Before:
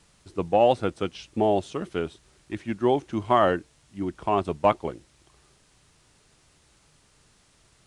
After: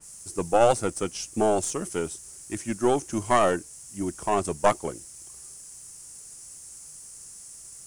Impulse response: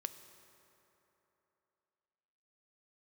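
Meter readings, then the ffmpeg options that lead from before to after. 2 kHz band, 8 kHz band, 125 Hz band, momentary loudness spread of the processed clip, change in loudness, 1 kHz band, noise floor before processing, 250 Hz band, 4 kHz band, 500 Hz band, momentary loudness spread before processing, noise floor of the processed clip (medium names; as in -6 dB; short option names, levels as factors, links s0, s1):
+1.5 dB, no reading, -1.5 dB, 19 LU, -0.5 dB, -0.5 dB, -62 dBFS, -1.0 dB, 0.0 dB, -0.5 dB, 13 LU, -46 dBFS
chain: -af "aexciter=amount=14.3:drive=5.2:freq=5700,aeval=exprs='0.501*(cos(1*acos(clip(val(0)/0.501,-1,1)))-cos(1*PI/2))+0.2*(cos(2*acos(clip(val(0)/0.501,-1,1)))-cos(2*PI/2))':c=same,adynamicequalizer=threshold=0.0112:dfrequency=3200:dqfactor=0.7:tfrequency=3200:tqfactor=0.7:attack=5:release=100:ratio=0.375:range=1.5:mode=cutabove:tftype=highshelf"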